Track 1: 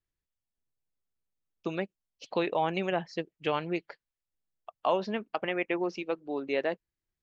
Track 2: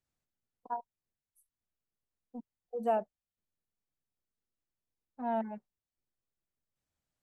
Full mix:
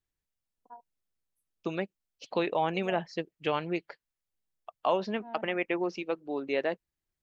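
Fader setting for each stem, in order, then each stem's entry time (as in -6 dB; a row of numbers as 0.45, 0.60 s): 0.0, -12.5 dB; 0.00, 0.00 s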